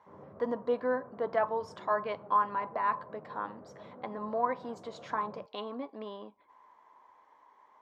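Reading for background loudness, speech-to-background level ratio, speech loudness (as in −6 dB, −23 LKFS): −52.0 LKFS, 18.0 dB, −34.0 LKFS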